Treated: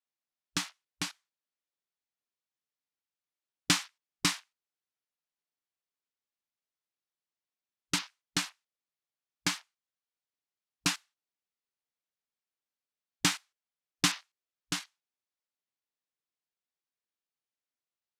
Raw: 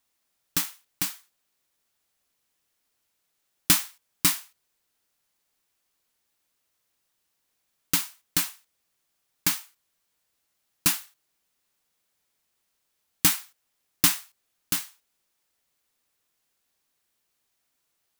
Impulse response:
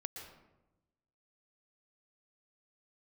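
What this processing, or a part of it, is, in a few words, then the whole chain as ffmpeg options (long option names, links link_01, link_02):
over-cleaned archive recording: -af "highpass=110,lowpass=6100,afwtdn=0.00447,volume=-1.5dB"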